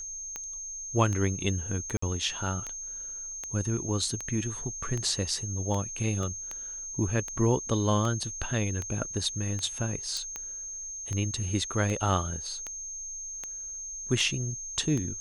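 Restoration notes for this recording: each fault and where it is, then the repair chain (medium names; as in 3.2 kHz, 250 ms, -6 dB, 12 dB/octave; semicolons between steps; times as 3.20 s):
tick 78 rpm -20 dBFS
whine 6.4 kHz -36 dBFS
1.97–2.02 s: dropout 54 ms
6.23 s: dropout 2.3 ms
10.17 s: pop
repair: de-click; band-stop 6.4 kHz, Q 30; interpolate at 1.97 s, 54 ms; interpolate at 6.23 s, 2.3 ms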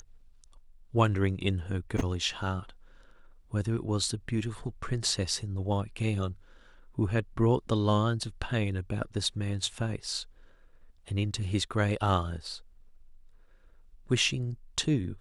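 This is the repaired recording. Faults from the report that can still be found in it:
10.17 s: pop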